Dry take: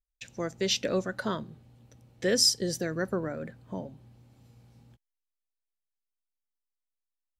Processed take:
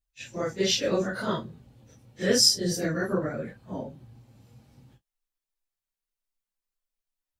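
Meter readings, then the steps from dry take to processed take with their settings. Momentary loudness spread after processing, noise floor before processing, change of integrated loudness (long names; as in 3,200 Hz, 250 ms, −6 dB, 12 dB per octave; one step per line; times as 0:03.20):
19 LU, below −85 dBFS, +3.5 dB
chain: random phases in long frames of 100 ms
level +3 dB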